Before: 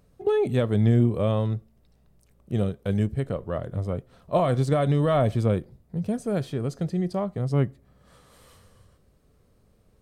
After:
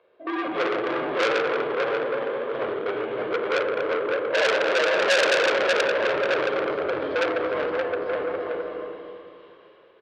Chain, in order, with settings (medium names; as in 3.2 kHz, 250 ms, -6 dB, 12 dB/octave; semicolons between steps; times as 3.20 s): backward echo that repeats 127 ms, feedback 62%, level -9.5 dB; peaking EQ 600 Hz +6 dB 0.29 oct; hard clipper -21 dBFS, distortion -9 dB; mistuned SSB -87 Hz 490–3500 Hz; bouncing-ball echo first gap 570 ms, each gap 0.6×, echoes 5; reverberation RT60 1.5 s, pre-delay 11 ms, DRR -1 dB; transformer saturation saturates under 3.3 kHz; trim +3.5 dB